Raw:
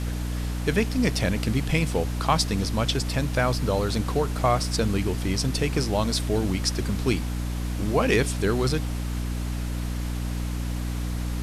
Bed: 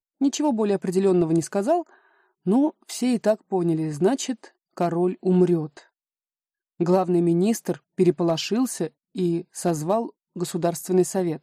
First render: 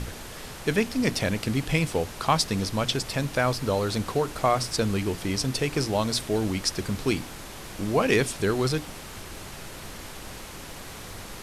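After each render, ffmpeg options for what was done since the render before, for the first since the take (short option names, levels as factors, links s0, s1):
-af "bandreject=f=60:t=h:w=6,bandreject=f=120:t=h:w=6,bandreject=f=180:t=h:w=6,bandreject=f=240:t=h:w=6,bandreject=f=300:t=h:w=6"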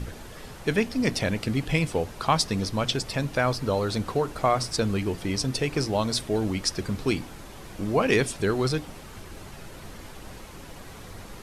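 -af "afftdn=nr=7:nf=-41"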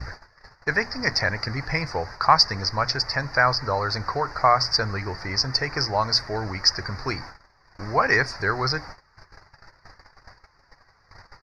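-af "agate=range=0.0891:threshold=0.0126:ratio=16:detection=peak,firequalizer=gain_entry='entry(120,0);entry(200,-10);entry(860,7);entry(1900,11);entry(3200,-27);entry(4700,14);entry(7800,-21)':delay=0.05:min_phase=1"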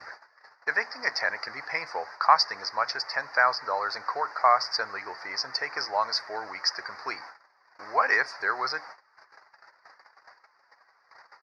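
-af "highpass=710,highshelf=f=3200:g=-10.5"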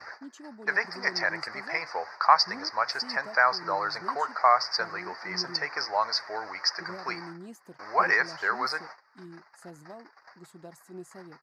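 -filter_complex "[1:a]volume=0.0668[s0];[0:a][s0]amix=inputs=2:normalize=0"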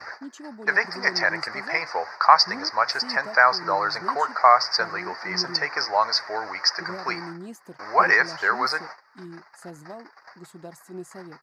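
-af "volume=1.88,alimiter=limit=0.891:level=0:latency=1"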